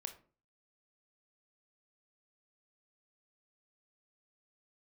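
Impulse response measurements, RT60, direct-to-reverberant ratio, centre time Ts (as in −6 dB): 0.40 s, 6.5 dB, 9 ms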